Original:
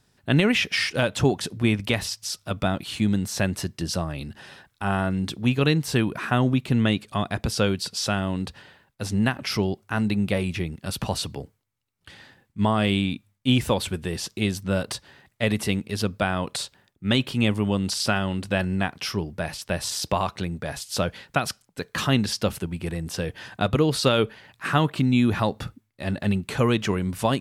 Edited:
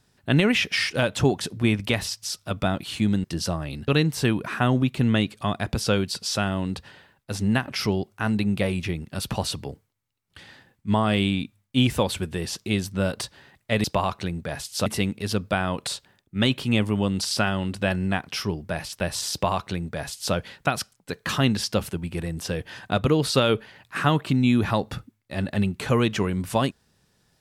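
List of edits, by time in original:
3.24–3.72 s: delete
4.36–5.59 s: delete
20.01–21.03 s: copy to 15.55 s

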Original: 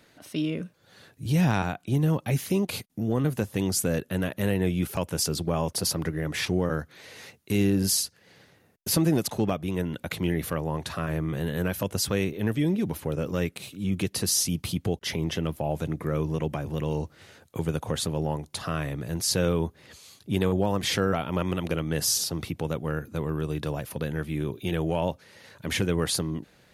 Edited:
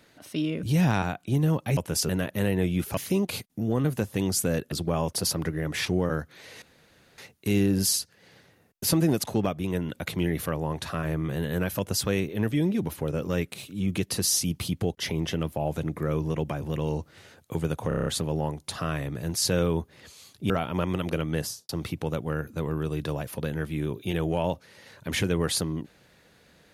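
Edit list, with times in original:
0.63–1.23 s: delete
2.37–4.12 s: swap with 5.00–5.32 s
7.22 s: insert room tone 0.56 s
17.92 s: stutter 0.03 s, 7 plays
20.36–21.08 s: delete
21.92–22.27 s: studio fade out

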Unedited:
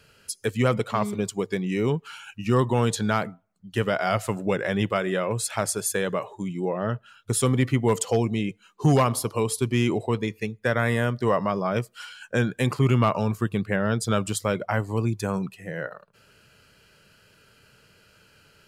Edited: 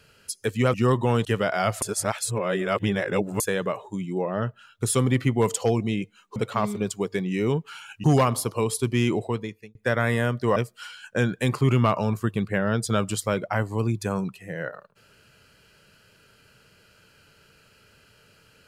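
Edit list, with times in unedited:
0.74–2.42 s: move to 8.83 s
2.93–3.72 s: delete
4.29–5.87 s: reverse
9.98–10.54 s: fade out
11.35–11.74 s: delete

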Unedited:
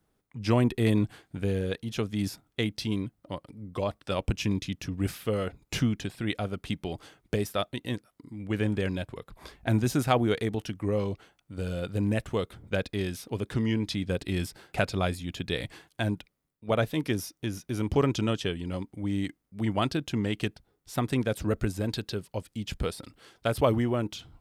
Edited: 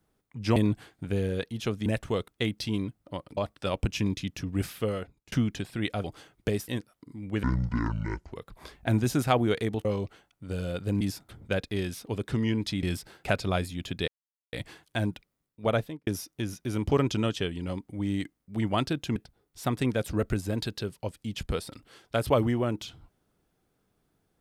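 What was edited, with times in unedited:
0.56–0.88 s: delete
2.18–2.46 s: swap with 12.09–12.51 s
3.55–3.82 s: delete
5.28–5.77 s: fade out
6.49–6.90 s: delete
7.54–7.85 s: delete
8.60–9.13 s: speed 59%
10.65–10.93 s: delete
14.05–14.32 s: delete
15.57 s: insert silence 0.45 s
16.76–17.11 s: studio fade out
20.20–20.47 s: delete

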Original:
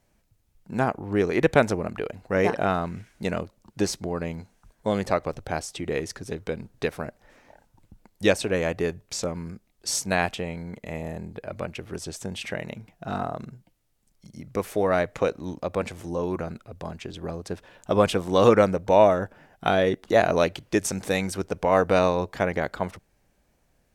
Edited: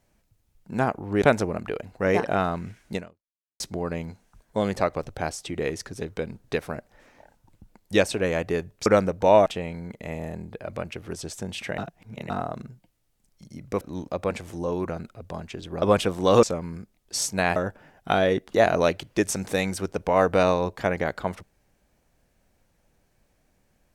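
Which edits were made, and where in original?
1.22–1.52 s: delete
3.25–3.90 s: fade out exponential
9.16–10.29 s: swap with 18.52–19.12 s
12.61–13.13 s: reverse
14.64–15.32 s: delete
17.33–17.91 s: delete

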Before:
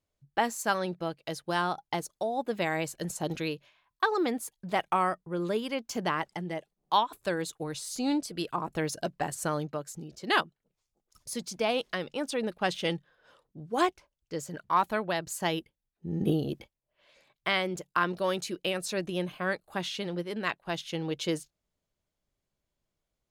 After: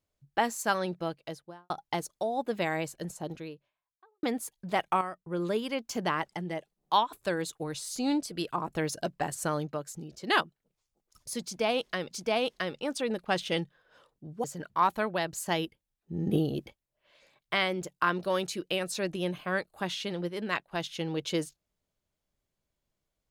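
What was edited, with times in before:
1.08–1.70 s: studio fade out
2.47–4.23 s: studio fade out
5.01–5.26 s: gain -9 dB
11.44–12.11 s: loop, 2 plays
13.77–14.38 s: delete

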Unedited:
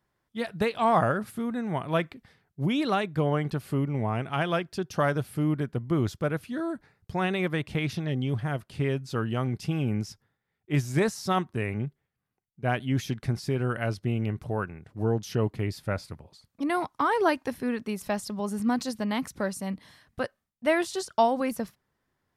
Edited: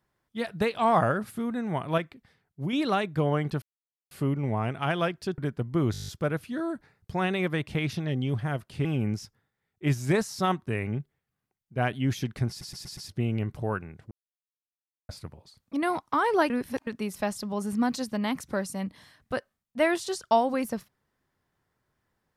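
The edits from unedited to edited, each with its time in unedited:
1.98–2.73 s: gain -4.5 dB
3.62 s: insert silence 0.49 s
4.89–5.54 s: delete
6.08 s: stutter 0.02 s, 9 plays
8.85–9.72 s: delete
13.36 s: stutter in place 0.12 s, 5 plays
14.98–15.96 s: mute
17.37–17.74 s: reverse

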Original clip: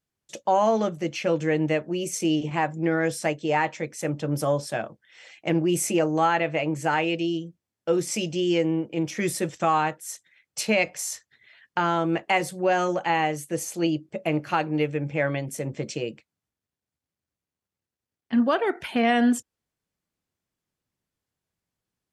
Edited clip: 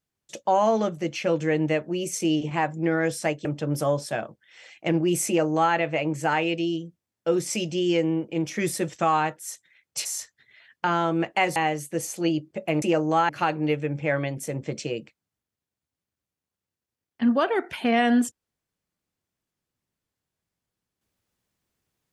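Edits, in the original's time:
3.45–4.06 s: delete
5.88–6.35 s: copy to 14.40 s
10.66–10.98 s: delete
12.49–13.14 s: delete

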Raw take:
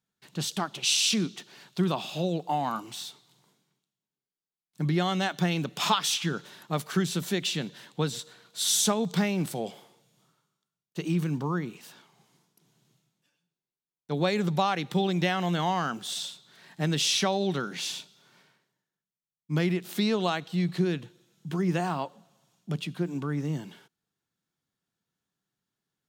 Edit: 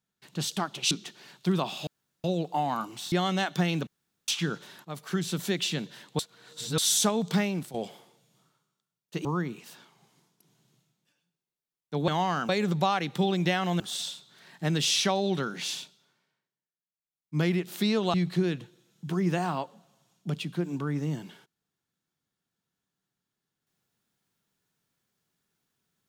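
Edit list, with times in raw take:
0.91–1.23 s: delete
2.19 s: insert room tone 0.37 s
3.07–4.95 s: delete
5.70–6.11 s: room tone
6.68–7.44 s: fade in equal-power, from -13 dB
8.02–8.61 s: reverse
9.26–9.57 s: fade out linear, to -12.5 dB
11.08–11.42 s: delete
15.56–15.97 s: move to 14.25 s
17.88–19.55 s: dip -15.5 dB, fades 0.49 s
20.31–20.56 s: delete

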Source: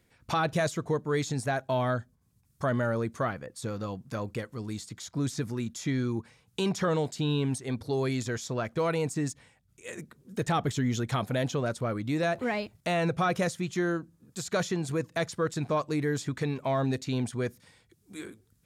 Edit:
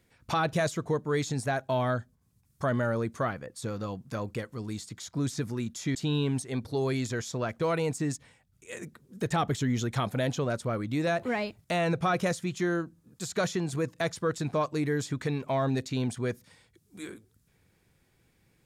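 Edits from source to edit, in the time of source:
5.95–7.11 s: delete

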